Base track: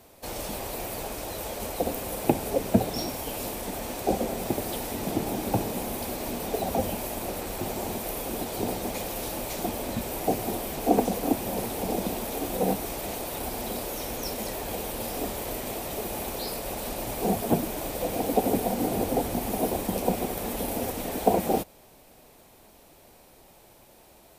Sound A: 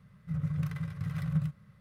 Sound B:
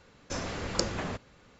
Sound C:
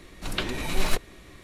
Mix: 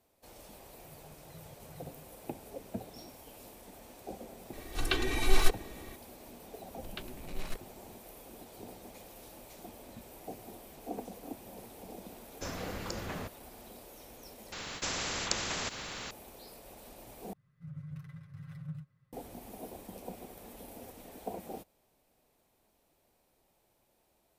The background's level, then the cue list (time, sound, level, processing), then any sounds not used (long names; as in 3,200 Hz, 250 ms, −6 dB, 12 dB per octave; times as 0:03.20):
base track −18.5 dB
0:00.54: mix in A −13 dB + volume swells 373 ms
0:04.53: mix in C −4.5 dB + comb filter 2.6 ms, depth 92%
0:06.59: mix in C −14 dB + adaptive Wiener filter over 41 samples
0:12.11: mix in B −5 dB + brickwall limiter −15 dBFS
0:14.52: overwrite with B −2.5 dB + every bin compressed towards the loudest bin 4 to 1
0:17.33: overwrite with A −16 dB + comb filter 7.5 ms, depth 81%